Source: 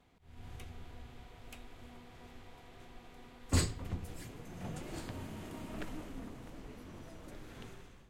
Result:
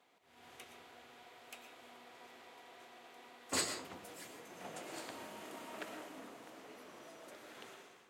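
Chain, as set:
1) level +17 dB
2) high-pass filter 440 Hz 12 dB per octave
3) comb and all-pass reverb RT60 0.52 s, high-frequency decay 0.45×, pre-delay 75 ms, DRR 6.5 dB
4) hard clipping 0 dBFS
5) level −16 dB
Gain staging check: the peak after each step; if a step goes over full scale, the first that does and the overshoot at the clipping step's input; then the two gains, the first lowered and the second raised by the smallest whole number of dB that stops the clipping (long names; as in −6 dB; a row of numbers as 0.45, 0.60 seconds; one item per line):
−0.5, −6.0, −6.0, −6.0, −22.0 dBFS
no step passes full scale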